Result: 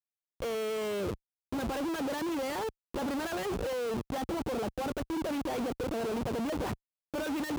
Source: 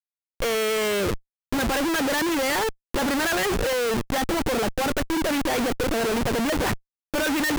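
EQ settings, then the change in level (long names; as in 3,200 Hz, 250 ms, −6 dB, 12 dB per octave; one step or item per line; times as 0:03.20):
high-pass filter 47 Hz 12 dB per octave
parametric band 1,800 Hz −5.5 dB 0.74 octaves
high-shelf EQ 2,300 Hz −8 dB
−8.0 dB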